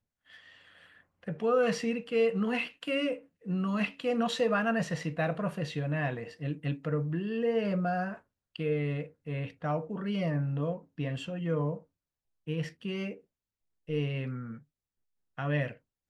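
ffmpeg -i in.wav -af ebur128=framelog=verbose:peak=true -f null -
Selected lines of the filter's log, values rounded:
Integrated loudness:
  I:         -32.1 LUFS
  Threshold: -42.8 LUFS
Loudness range:
  LRA:         6.6 LU
  Threshold: -52.8 LUFS
  LRA low:   -37.0 LUFS
  LRA high:  -30.3 LUFS
True peak:
  Peak:      -16.9 dBFS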